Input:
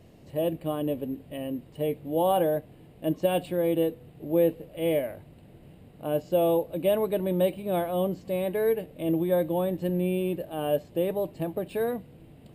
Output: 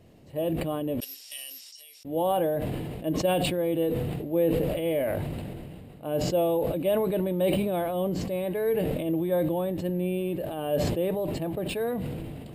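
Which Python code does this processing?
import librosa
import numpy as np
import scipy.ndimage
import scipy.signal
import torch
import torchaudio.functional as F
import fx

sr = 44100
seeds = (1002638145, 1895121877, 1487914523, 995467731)

y = fx.ladder_bandpass(x, sr, hz=5700.0, resonance_pct=90, at=(1.0, 2.05))
y = fx.sustainer(y, sr, db_per_s=23.0)
y = y * librosa.db_to_amplitude(-2.0)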